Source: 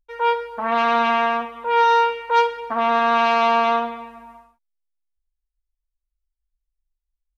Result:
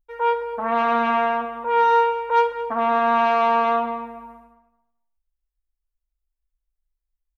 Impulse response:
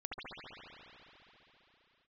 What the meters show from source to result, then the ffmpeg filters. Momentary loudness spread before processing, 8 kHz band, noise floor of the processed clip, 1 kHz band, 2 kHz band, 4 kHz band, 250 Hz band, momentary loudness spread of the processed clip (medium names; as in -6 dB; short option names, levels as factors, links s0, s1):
7 LU, no reading, -82 dBFS, -1.0 dB, -3.5 dB, -8.0 dB, 0.0 dB, 8 LU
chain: -filter_complex "[0:a]equalizer=f=4900:t=o:w=2.1:g=-10.5,asplit=2[s0][s1];[s1]adelay=219,lowpass=f=2500:p=1,volume=0.251,asplit=2[s2][s3];[s3]adelay=219,lowpass=f=2500:p=1,volume=0.21,asplit=2[s4][s5];[s5]adelay=219,lowpass=f=2500:p=1,volume=0.21[s6];[s2][s4][s6]amix=inputs=3:normalize=0[s7];[s0][s7]amix=inputs=2:normalize=0"